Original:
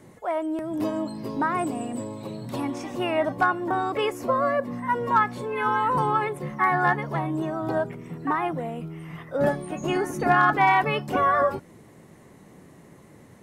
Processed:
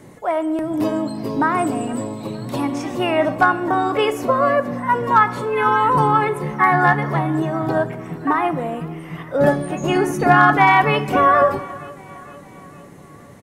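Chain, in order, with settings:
repeating echo 462 ms, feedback 60%, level −22.5 dB
on a send at −12 dB: convolution reverb RT60 1.1 s, pre-delay 7 ms
on the sum: level +6.5 dB

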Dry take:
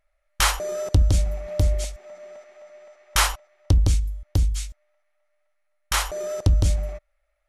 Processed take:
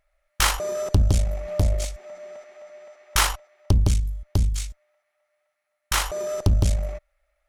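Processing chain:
one-sided soft clipper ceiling −25 dBFS
level +2.5 dB

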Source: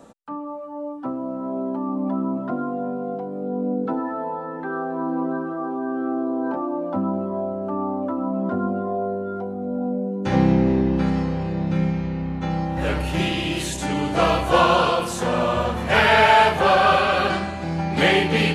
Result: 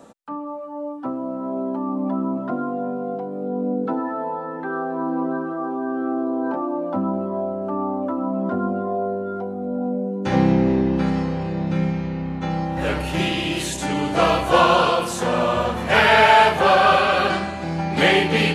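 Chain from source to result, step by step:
low-shelf EQ 90 Hz −8 dB
level +1.5 dB

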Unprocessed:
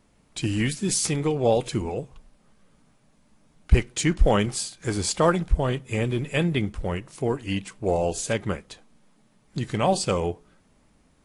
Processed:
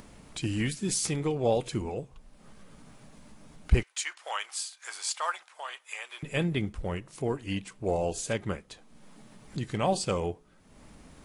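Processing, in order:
0:03.83–0:06.23: high-pass filter 880 Hz 24 dB per octave
upward compression, threshold −32 dBFS
level −5 dB

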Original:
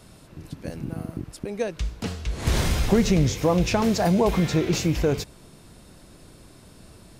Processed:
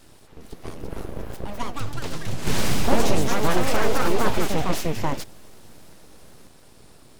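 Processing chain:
full-wave rectification
delay with pitch and tempo change per echo 420 ms, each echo +3 semitones, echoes 3

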